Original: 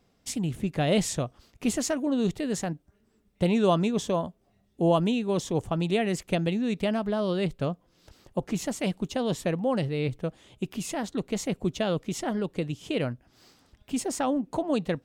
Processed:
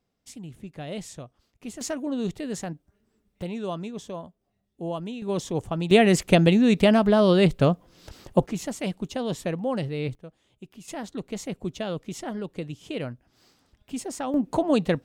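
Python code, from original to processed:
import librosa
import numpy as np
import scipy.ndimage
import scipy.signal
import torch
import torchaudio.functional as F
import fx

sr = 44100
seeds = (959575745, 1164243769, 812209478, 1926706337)

y = fx.gain(x, sr, db=fx.steps((0.0, -11.0), (1.81, -2.5), (3.42, -9.0), (5.22, -0.5), (5.91, 9.0), (8.46, -1.0), (10.15, -12.5), (10.88, -3.5), (14.34, 5.0)))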